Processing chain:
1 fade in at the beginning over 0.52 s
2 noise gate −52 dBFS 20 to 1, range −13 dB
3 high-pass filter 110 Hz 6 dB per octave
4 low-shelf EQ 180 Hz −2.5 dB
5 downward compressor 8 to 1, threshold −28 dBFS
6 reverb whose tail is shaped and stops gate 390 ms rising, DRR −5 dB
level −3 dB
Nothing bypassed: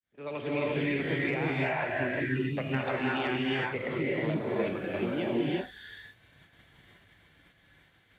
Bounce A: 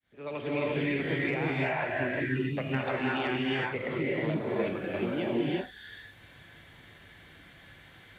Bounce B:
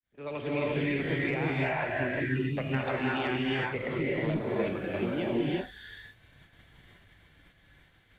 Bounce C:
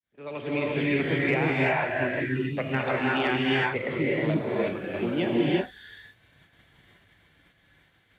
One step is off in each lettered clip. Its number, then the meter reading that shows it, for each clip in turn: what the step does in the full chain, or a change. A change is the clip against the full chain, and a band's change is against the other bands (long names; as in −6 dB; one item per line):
2, change in momentary loudness spread +2 LU
3, 125 Hz band +1.5 dB
5, average gain reduction 2.5 dB